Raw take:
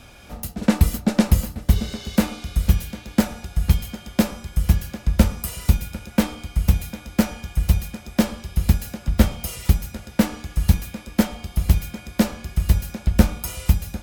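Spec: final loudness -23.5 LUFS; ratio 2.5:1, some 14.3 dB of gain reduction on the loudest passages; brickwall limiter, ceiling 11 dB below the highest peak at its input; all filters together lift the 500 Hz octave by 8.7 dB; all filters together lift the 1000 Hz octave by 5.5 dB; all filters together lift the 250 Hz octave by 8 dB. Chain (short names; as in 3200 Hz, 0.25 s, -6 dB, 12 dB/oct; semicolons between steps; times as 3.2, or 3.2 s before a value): bell 250 Hz +8.5 dB; bell 500 Hz +7 dB; bell 1000 Hz +4 dB; compressor 2.5:1, threshold -26 dBFS; gain +9 dB; limiter -8.5 dBFS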